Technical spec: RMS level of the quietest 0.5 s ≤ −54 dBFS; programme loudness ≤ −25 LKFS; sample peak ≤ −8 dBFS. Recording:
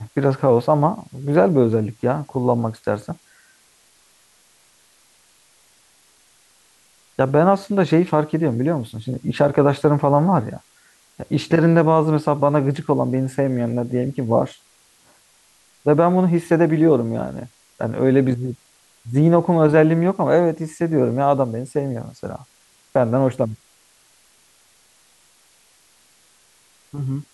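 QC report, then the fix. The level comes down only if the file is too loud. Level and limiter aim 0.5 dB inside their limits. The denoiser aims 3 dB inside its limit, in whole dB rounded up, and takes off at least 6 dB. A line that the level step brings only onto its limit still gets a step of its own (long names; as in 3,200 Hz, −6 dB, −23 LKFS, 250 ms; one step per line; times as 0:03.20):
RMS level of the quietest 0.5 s −56 dBFS: in spec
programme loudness −19.0 LKFS: out of spec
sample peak −4.0 dBFS: out of spec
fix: level −6.5 dB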